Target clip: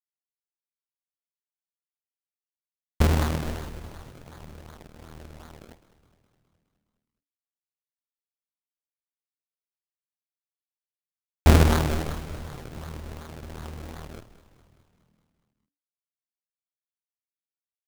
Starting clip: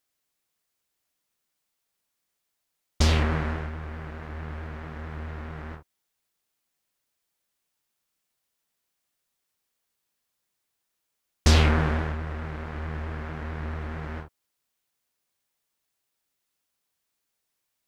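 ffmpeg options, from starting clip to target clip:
ffmpeg -i in.wav -filter_complex "[0:a]acrusher=samples=32:mix=1:aa=0.000001:lfo=1:lforange=32:lforate=2.7,aeval=exprs='0.316*(cos(1*acos(clip(val(0)/0.316,-1,1)))-cos(1*PI/2))+0.0447*(cos(3*acos(clip(val(0)/0.316,-1,1)))-cos(3*PI/2))':channel_layout=same,aeval=exprs='sgn(val(0))*max(abs(val(0))-0.00794,0)':channel_layout=same,asplit=2[link_01][link_02];[link_02]asplit=7[link_03][link_04][link_05][link_06][link_07][link_08][link_09];[link_03]adelay=208,afreqshift=-41,volume=-15.5dB[link_10];[link_04]adelay=416,afreqshift=-82,volume=-19.4dB[link_11];[link_05]adelay=624,afreqshift=-123,volume=-23.3dB[link_12];[link_06]adelay=832,afreqshift=-164,volume=-27.1dB[link_13];[link_07]adelay=1040,afreqshift=-205,volume=-31dB[link_14];[link_08]adelay=1248,afreqshift=-246,volume=-34.9dB[link_15];[link_09]adelay=1456,afreqshift=-287,volume=-38.8dB[link_16];[link_10][link_11][link_12][link_13][link_14][link_15][link_16]amix=inputs=7:normalize=0[link_17];[link_01][link_17]amix=inputs=2:normalize=0,volume=4.5dB" out.wav

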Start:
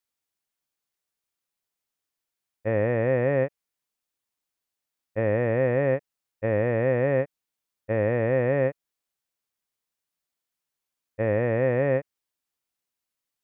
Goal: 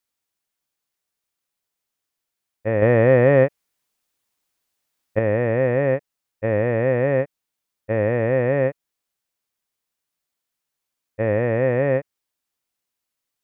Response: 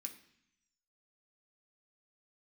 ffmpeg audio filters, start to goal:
-filter_complex "[0:a]asettb=1/sr,asplit=3[link_01][link_02][link_03];[link_01]atrim=end=2.824[link_04];[link_02]atrim=start=2.82:end=5.19,asetpts=PTS-STARTPTS,afade=type=in:duration=0.004:curve=qsin,afade=type=out:start_time=2.366:duration=0.004:curve=qsin,acontrast=37[link_05];[link_03]atrim=start=5.186[link_06];[link_04][link_05]acrossfade=duration=0.004:curve1=hsin:curve2=qsin[link_07];[link_07][link_06]acrossfade=duration=0.004:curve1=qsin:curve2=hsin,volume=3.5dB"

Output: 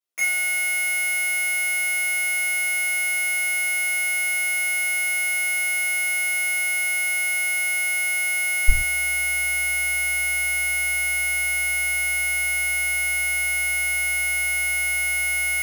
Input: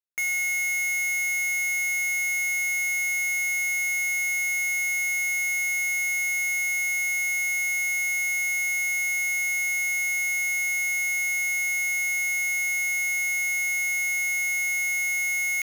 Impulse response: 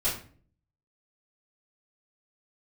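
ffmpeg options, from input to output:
-filter_complex "[0:a]asetnsamples=nb_out_samples=441:pad=0,asendcmd='8.68 highpass f 43',highpass=170[link_01];[1:a]atrim=start_sample=2205,atrim=end_sample=6615[link_02];[link_01][link_02]afir=irnorm=-1:irlink=0,volume=-1dB"

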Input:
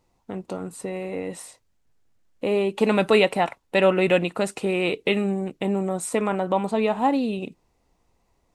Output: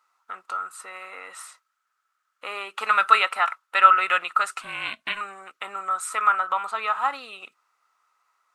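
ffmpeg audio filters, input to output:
ffmpeg -i in.wav -filter_complex "[0:a]highpass=frequency=1300:width_type=q:width=14,asettb=1/sr,asplit=3[link_01][link_02][link_03];[link_01]atrim=end=4.614[link_04];[link_02]atrim=start=4.61:end=5.21,asetpts=PTS-STARTPTS,afade=type=in:duration=0.004:curve=qsin,afade=type=out:start_time=0.596:duration=0.004:curve=qsin,aeval=exprs='val(0)*sin(2*PI*210*n/s)':channel_layout=same[link_05];[link_03]atrim=start=5.206[link_06];[link_04][link_05]acrossfade=duration=0.004:curve1=hsin:curve2=qsin[link_07];[link_07][link_06]acrossfade=duration=0.004:curve1=qsin:curve2=hsin,volume=-1.5dB" out.wav

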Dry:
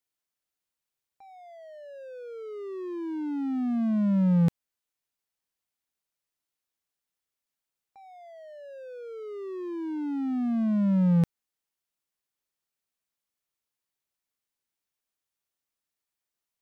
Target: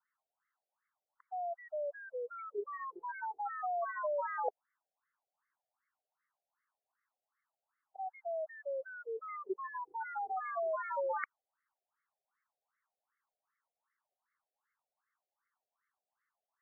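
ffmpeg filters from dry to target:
ffmpeg -i in.wav -af "equalizer=frequency=460:width=2.3:gain=-12,afftfilt=real='re*between(b*sr/1024,540*pow(1600/540,0.5+0.5*sin(2*PI*2.6*pts/sr))/1.41,540*pow(1600/540,0.5+0.5*sin(2*PI*2.6*pts/sr))*1.41)':imag='im*between(b*sr/1024,540*pow(1600/540,0.5+0.5*sin(2*PI*2.6*pts/sr))/1.41,540*pow(1600/540,0.5+0.5*sin(2*PI*2.6*pts/sr))*1.41)':win_size=1024:overlap=0.75,volume=13.5dB" out.wav

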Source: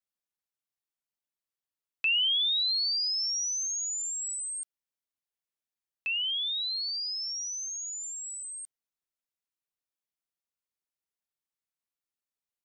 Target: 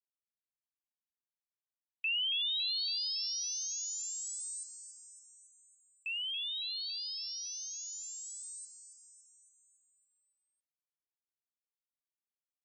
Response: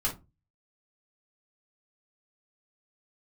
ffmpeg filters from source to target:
-filter_complex "[0:a]afftdn=noise_reduction=20:noise_floor=-42,asplit=2[link_01][link_02];[link_02]aecho=0:1:279|558|837|1116|1395|1674|1953:0.316|0.183|0.106|0.0617|0.0358|0.0208|0.012[link_03];[link_01][link_03]amix=inputs=2:normalize=0,volume=-7dB"

